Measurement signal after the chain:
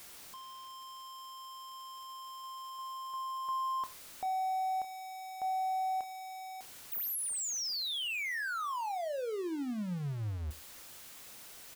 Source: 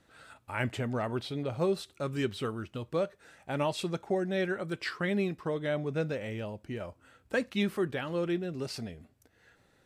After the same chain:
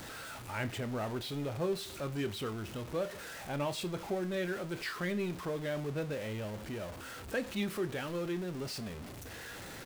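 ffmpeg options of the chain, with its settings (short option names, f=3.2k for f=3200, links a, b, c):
-filter_complex "[0:a]aeval=exprs='val(0)+0.5*0.02*sgn(val(0))':c=same,asplit=2[a][b];[b]adelay=28,volume=-13dB[c];[a][c]amix=inputs=2:normalize=0,aecho=1:1:91:0.075,volume=-6.5dB"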